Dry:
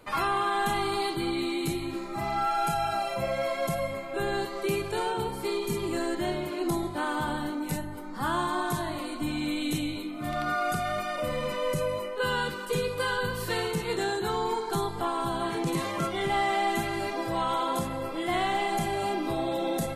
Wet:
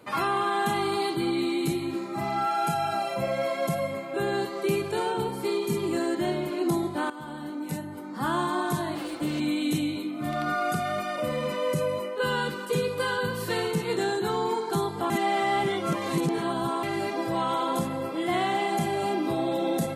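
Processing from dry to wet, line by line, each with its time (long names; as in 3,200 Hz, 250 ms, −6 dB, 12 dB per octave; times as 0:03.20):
0:07.10–0:08.18: fade in, from −14.5 dB
0:08.95–0:09.40: lower of the sound and its delayed copy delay 6 ms
0:15.10–0:16.83: reverse
whole clip: high-pass filter 180 Hz 12 dB per octave; low-shelf EQ 250 Hz +10.5 dB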